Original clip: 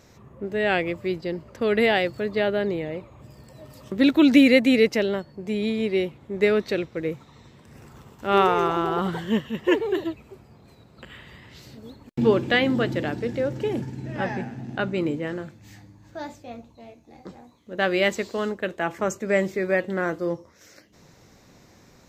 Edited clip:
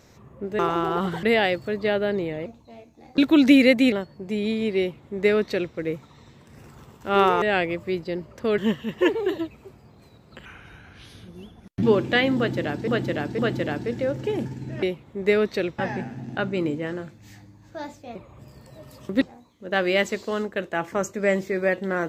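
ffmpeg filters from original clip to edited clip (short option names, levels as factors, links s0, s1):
-filter_complex "[0:a]asplit=16[s0][s1][s2][s3][s4][s5][s6][s7][s8][s9][s10][s11][s12][s13][s14][s15];[s0]atrim=end=0.592[s16];[s1]atrim=start=8.598:end=9.242[s17];[s2]atrim=start=1.748:end=2.982[s18];[s3]atrim=start=16.558:end=17.282[s19];[s4]atrim=start=4.038:end=4.782[s20];[s5]atrim=start=5.098:end=8.602[s21];[s6]atrim=start=0.588:end=1.752[s22];[s7]atrim=start=9.238:end=11.114[s23];[s8]atrim=start=11.11:end=12.21,asetpts=PTS-STARTPTS,asetrate=35280,aresample=44100[s24];[s9]atrim=start=12.206:end=13.262[s25];[s10]atrim=start=12.748:end=13.262[s26];[s11]atrim=start=12.748:end=14.192[s27];[s12]atrim=start=5.968:end=6.932[s28];[s13]atrim=start=14.188:end=16.562[s29];[s14]atrim=start=2.978:end=4.042[s30];[s15]atrim=start=17.278[s31];[s16][s17]acrossfade=d=0.004:c1=hsin:c2=hsin[s32];[s32][s18]acrossfade=d=0.004:c1=hsin:c2=hsin[s33];[s33][s19]acrossfade=d=0.004:c1=hsin:c2=hsin[s34];[s34][s20]acrossfade=d=0.004:c1=hsin:c2=hsin[s35];[s35][s21]acrossfade=d=0.004:c1=hsin:c2=hsin[s36];[s36][s22]acrossfade=d=0.004:c1=hsin:c2=hsin[s37];[s37][s23]acrossfade=d=0.004:c1=hsin:c2=hsin[s38];[s38][s24]acrossfade=d=0.004:c1=hsin:c2=hsin[s39];[s39][s25]acrossfade=d=0.004:c1=hsin:c2=hsin[s40];[s40][s26]acrossfade=d=0.004:c1=hsin:c2=hsin[s41];[s41][s27]acrossfade=d=0.004:c1=hsin:c2=hsin[s42];[s42][s28]acrossfade=d=0.004:c1=hsin:c2=hsin[s43];[s43][s29]acrossfade=d=0.004:c1=hsin:c2=hsin[s44];[s44][s30]acrossfade=d=0.004:c1=hsin:c2=hsin[s45];[s45][s31]acrossfade=d=0.004:c1=hsin:c2=hsin"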